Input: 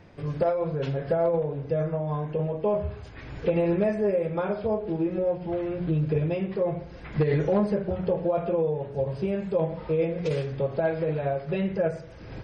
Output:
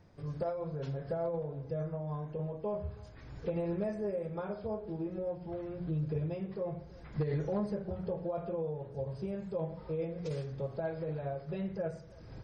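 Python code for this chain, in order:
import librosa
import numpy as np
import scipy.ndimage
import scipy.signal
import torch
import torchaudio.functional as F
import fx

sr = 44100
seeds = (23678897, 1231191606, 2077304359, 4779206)

y = fx.curve_eq(x, sr, hz=(130.0, 310.0, 1200.0, 2700.0, 5000.0), db=(0, -4, -3, -9, 1))
y = y + 10.0 ** (-23.0 / 20.0) * np.pad(y, (int(325 * sr / 1000.0), 0))[:len(y)]
y = y * librosa.db_to_amplitude(-7.5)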